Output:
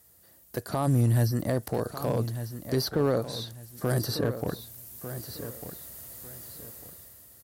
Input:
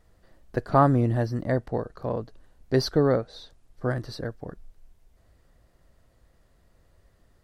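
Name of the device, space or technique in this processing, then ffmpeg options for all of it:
FM broadcast chain: -filter_complex "[0:a]asplit=3[link_01][link_02][link_03];[link_01]afade=type=out:start_time=0.86:duration=0.02[link_04];[link_02]asubboost=boost=5.5:cutoff=220,afade=type=in:start_time=0.86:duration=0.02,afade=type=out:start_time=1.3:duration=0.02[link_05];[link_03]afade=type=in:start_time=1.3:duration=0.02[link_06];[link_04][link_05][link_06]amix=inputs=3:normalize=0,highpass=frequency=72:width=0.5412,highpass=frequency=72:width=1.3066,dynaudnorm=framelen=130:gausssize=11:maxgain=14.5dB,acrossover=split=1100|3300[link_07][link_08][link_09];[link_07]acompressor=threshold=-16dB:ratio=4[link_10];[link_08]acompressor=threshold=-39dB:ratio=4[link_11];[link_09]acompressor=threshold=-49dB:ratio=4[link_12];[link_10][link_11][link_12]amix=inputs=3:normalize=0,aemphasis=mode=production:type=50fm,alimiter=limit=-13dB:level=0:latency=1:release=32,asoftclip=type=hard:threshold=-14.5dB,lowpass=frequency=15000:width=0.5412,lowpass=frequency=15000:width=1.3066,aemphasis=mode=production:type=50fm,aecho=1:1:1198|2396|3594:0.282|0.0761|0.0205,volume=-3dB"

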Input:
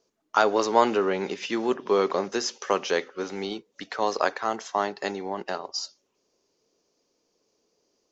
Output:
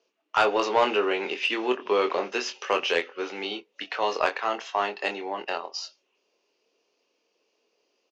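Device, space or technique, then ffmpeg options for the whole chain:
intercom: -filter_complex "[0:a]highpass=360,lowpass=4400,equalizer=frequency=2700:width_type=o:width=0.45:gain=11.5,asoftclip=type=tanh:threshold=-10.5dB,asplit=2[link_01][link_02];[link_02]adelay=24,volume=-6dB[link_03];[link_01][link_03]amix=inputs=2:normalize=0"

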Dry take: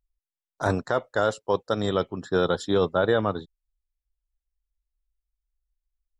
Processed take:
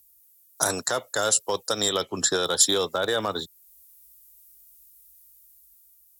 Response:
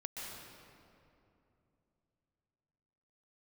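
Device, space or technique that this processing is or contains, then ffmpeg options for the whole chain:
FM broadcast chain: -filter_complex "[0:a]highpass=59,dynaudnorm=framelen=590:gausssize=5:maxgain=5dB,acrossover=split=110|310[link_01][link_02][link_03];[link_01]acompressor=threshold=-46dB:ratio=4[link_04];[link_02]acompressor=threshold=-39dB:ratio=4[link_05];[link_03]acompressor=threshold=-18dB:ratio=4[link_06];[link_04][link_05][link_06]amix=inputs=3:normalize=0,aemphasis=mode=production:type=75fm,alimiter=limit=-23.5dB:level=0:latency=1:release=499,asoftclip=type=hard:threshold=-25dB,lowpass=frequency=15000:width=0.5412,lowpass=frequency=15000:width=1.3066,aemphasis=mode=production:type=75fm,asettb=1/sr,asplit=3[link_07][link_08][link_09];[link_07]atrim=end=2.024[link_10];[link_08]atrim=start=2.02:end=2.45,asetpts=PTS-STARTPTS,afade=type=in:duration=0.004:curve=qsin,afade=type=out:start_time=0.426:duration=0.004:curve=qsin,lowpass=9300[link_11];[link_09]atrim=start=2.446[link_12];[link_10][link_11]acrossfade=duration=0.004:curve1=hsin:curve2=qsin[link_13];[link_13][link_12]acrossfade=duration=0.004:curve1=qsin:curve2=hsin,volume=8.5dB"

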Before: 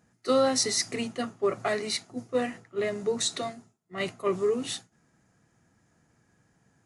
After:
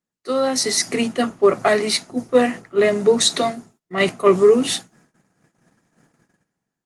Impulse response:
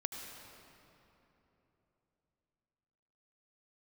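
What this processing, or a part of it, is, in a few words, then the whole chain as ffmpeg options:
video call: -af "highpass=frequency=140:width=0.5412,highpass=frequency=140:width=1.3066,dynaudnorm=framelen=180:gausssize=7:maxgain=15dB,agate=range=-20dB:threshold=-51dB:ratio=16:detection=peak" -ar 48000 -c:a libopus -b:a 24k

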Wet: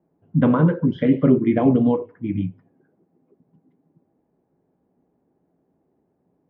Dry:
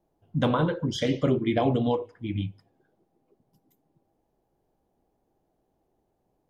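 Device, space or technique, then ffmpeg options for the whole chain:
bass cabinet: -af "highpass=83,equalizer=frequency=170:width_type=q:width=4:gain=9,equalizer=frequency=260:width_type=q:width=4:gain=8,equalizer=frequency=410:width_type=q:width=4:gain=3,equalizer=frequency=770:width_type=q:width=4:gain=-4,lowpass=frequency=2200:width=0.5412,lowpass=frequency=2200:width=1.3066,volume=3dB"

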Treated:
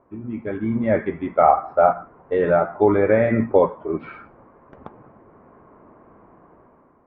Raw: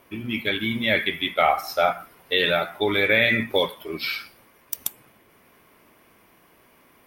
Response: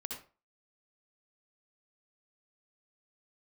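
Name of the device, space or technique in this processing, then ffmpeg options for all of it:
action camera in a waterproof case: -af "lowpass=frequency=1200:width=0.5412,lowpass=frequency=1200:width=1.3066,dynaudnorm=framelen=190:gausssize=7:maxgain=10.5dB,volume=-1dB" -ar 32000 -c:a aac -b:a 96k

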